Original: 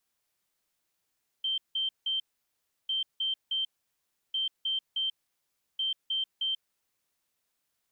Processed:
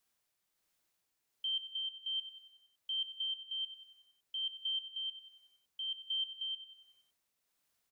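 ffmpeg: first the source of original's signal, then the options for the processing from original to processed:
-f lavfi -i "aevalsrc='0.0447*sin(2*PI*3130*t)*clip(min(mod(mod(t,1.45),0.31),0.14-mod(mod(t,1.45),0.31))/0.005,0,1)*lt(mod(t,1.45),0.93)':duration=5.8:sample_rate=44100"
-af "alimiter=level_in=8dB:limit=-24dB:level=0:latency=1:release=365,volume=-8dB,tremolo=f=1.3:d=0.39,aecho=1:1:93|186|279|372|465|558:0.224|0.123|0.0677|0.0372|0.0205|0.0113"

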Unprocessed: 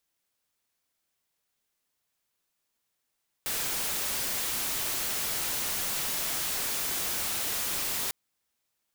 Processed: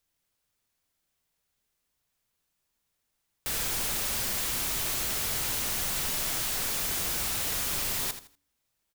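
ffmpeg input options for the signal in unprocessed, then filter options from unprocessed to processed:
-f lavfi -i "anoisesrc=color=white:amplitude=0.0488:duration=4.65:sample_rate=44100:seed=1"
-filter_complex "[0:a]lowshelf=frequency=140:gain=11.5,bandreject=frequency=71.16:width_type=h:width=4,bandreject=frequency=142.32:width_type=h:width=4,bandreject=frequency=213.48:width_type=h:width=4,bandreject=frequency=284.64:width_type=h:width=4,bandreject=frequency=355.8:width_type=h:width=4,asplit=2[link_01][link_02];[link_02]aecho=0:1:81|162|243:0.282|0.0761|0.0205[link_03];[link_01][link_03]amix=inputs=2:normalize=0"

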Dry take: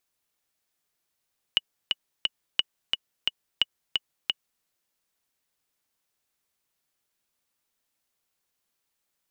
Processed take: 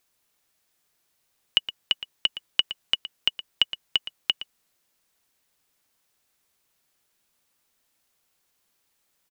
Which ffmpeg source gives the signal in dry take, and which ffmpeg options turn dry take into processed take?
-f lavfi -i "aevalsrc='pow(10,(-7-3.5*gte(mod(t,3*60/176),60/176))/20)*sin(2*PI*2930*mod(t,60/176))*exp(-6.91*mod(t,60/176)/0.03)':duration=3.06:sample_rate=44100"
-filter_complex "[0:a]asplit=2[link_01][link_02];[link_02]alimiter=limit=-17.5dB:level=0:latency=1:release=13,volume=2dB[link_03];[link_01][link_03]amix=inputs=2:normalize=0,asplit=2[link_04][link_05];[link_05]adelay=116.6,volume=-13dB,highshelf=frequency=4000:gain=-2.62[link_06];[link_04][link_06]amix=inputs=2:normalize=0"

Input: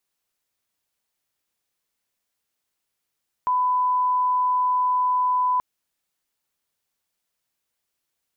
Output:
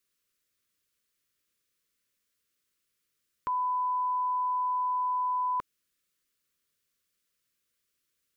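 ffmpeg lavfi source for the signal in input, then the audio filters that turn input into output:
-f lavfi -i "sine=frequency=1000:duration=2.13:sample_rate=44100,volume=0.06dB"
-af "asuperstop=centerf=790:order=4:qfactor=1.4"

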